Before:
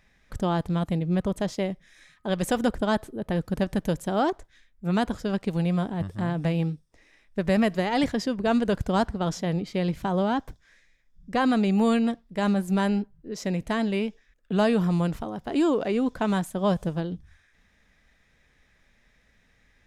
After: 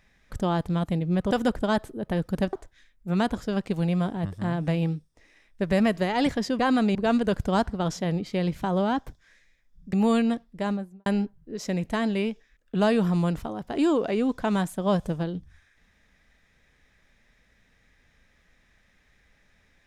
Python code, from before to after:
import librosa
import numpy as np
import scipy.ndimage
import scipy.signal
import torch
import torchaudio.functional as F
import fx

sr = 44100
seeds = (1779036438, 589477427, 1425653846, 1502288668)

y = fx.studio_fade_out(x, sr, start_s=12.24, length_s=0.59)
y = fx.edit(y, sr, fx.cut(start_s=1.31, length_s=1.19),
    fx.cut(start_s=3.72, length_s=0.58),
    fx.move(start_s=11.34, length_s=0.36, to_s=8.36), tone=tone)